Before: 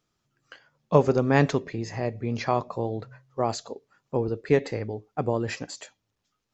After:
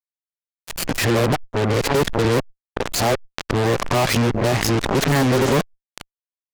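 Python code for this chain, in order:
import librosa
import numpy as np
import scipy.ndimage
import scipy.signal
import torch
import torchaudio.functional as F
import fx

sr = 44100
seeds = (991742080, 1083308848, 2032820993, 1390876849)

y = np.flip(x).copy()
y = fx.low_shelf(y, sr, hz=310.0, db=3.5)
y = fx.fuzz(y, sr, gain_db=30.0, gate_db=-38.0)
y = fx.cheby_harmonics(y, sr, harmonics=(3, 8), levels_db=(-17, -13), full_scale_db=-9.5)
y = fx.pre_swell(y, sr, db_per_s=54.0)
y = F.gain(torch.from_numpy(y), -1.5).numpy()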